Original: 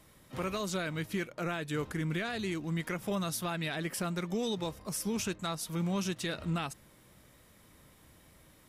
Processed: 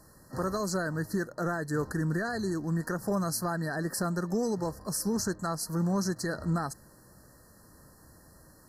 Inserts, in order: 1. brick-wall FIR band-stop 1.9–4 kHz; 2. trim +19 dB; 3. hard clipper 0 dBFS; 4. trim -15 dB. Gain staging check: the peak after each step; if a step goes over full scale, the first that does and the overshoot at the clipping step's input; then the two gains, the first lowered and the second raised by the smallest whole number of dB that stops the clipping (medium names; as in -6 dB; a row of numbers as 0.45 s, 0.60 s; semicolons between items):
-24.5 dBFS, -5.5 dBFS, -5.5 dBFS, -20.5 dBFS; nothing clips